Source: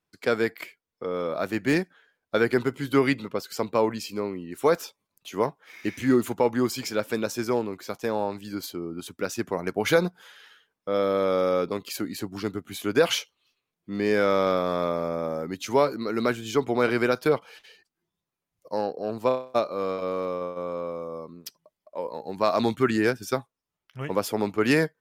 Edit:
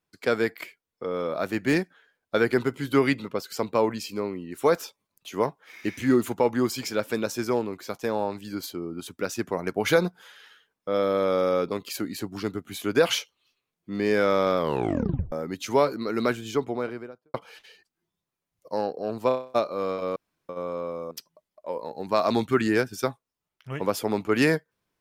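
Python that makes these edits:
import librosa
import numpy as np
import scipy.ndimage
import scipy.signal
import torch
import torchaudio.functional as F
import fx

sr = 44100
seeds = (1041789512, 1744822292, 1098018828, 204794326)

y = fx.studio_fade_out(x, sr, start_s=16.26, length_s=1.08)
y = fx.edit(y, sr, fx.tape_stop(start_s=14.58, length_s=0.74),
    fx.room_tone_fill(start_s=20.16, length_s=0.33),
    fx.cut(start_s=21.11, length_s=0.29), tone=tone)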